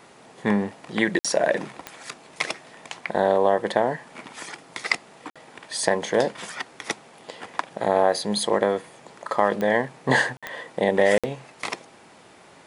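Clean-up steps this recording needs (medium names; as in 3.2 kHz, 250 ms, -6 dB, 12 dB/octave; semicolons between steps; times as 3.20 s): de-click; interpolate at 1.19/5.30/10.37/11.18 s, 56 ms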